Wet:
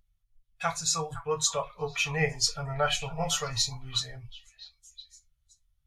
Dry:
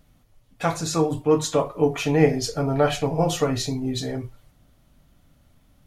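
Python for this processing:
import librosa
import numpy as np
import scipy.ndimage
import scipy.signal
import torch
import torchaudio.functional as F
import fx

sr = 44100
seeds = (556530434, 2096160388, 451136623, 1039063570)

y = fx.tone_stack(x, sr, knobs='10-0-10')
y = fx.echo_stepped(y, sr, ms=511, hz=1200.0, octaves=1.4, feedback_pct=70, wet_db=-7.5)
y = fx.spectral_expand(y, sr, expansion=1.5)
y = y * librosa.db_to_amplitude(4.0)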